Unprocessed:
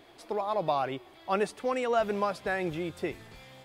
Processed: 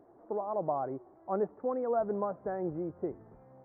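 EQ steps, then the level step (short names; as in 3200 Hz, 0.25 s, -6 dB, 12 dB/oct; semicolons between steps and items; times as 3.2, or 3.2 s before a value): Gaussian blur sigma 8.7 samples; low shelf 96 Hz -11.5 dB; 0.0 dB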